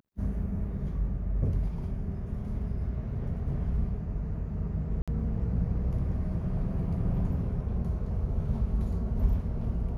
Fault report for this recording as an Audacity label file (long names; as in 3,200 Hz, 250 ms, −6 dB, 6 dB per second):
5.020000	5.080000	drop-out 56 ms